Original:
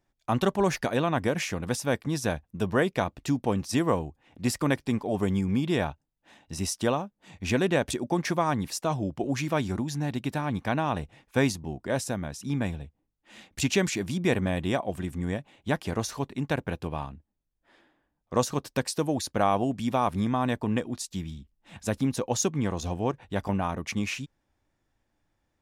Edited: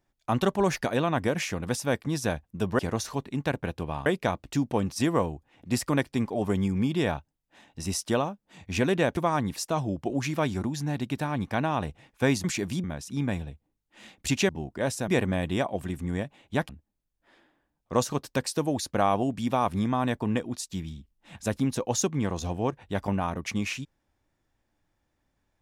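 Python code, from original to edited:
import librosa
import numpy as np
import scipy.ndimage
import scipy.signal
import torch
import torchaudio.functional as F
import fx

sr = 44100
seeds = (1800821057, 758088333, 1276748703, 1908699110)

y = fx.edit(x, sr, fx.cut(start_s=7.9, length_s=0.41),
    fx.swap(start_s=11.58, length_s=0.59, other_s=13.82, other_length_s=0.4),
    fx.move(start_s=15.83, length_s=1.27, to_s=2.79), tone=tone)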